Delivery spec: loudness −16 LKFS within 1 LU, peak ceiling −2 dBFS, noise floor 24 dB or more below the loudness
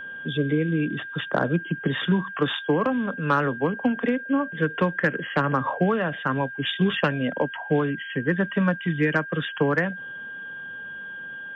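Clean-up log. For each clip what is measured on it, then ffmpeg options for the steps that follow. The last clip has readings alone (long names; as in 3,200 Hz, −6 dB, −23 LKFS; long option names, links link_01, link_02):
interfering tone 1,600 Hz; level of the tone −34 dBFS; integrated loudness −25.0 LKFS; sample peak −9.5 dBFS; target loudness −16.0 LKFS
→ -af "bandreject=frequency=1600:width=30"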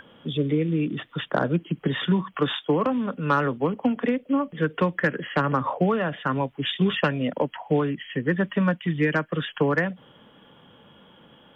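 interfering tone none found; integrated loudness −25.0 LKFS; sample peak −9.5 dBFS; target loudness −16.0 LKFS
→ -af "volume=9dB,alimiter=limit=-2dB:level=0:latency=1"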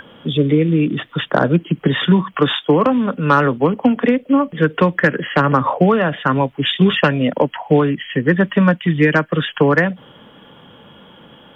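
integrated loudness −16.5 LKFS; sample peak −2.0 dBFS; background noise floor −45 dBFS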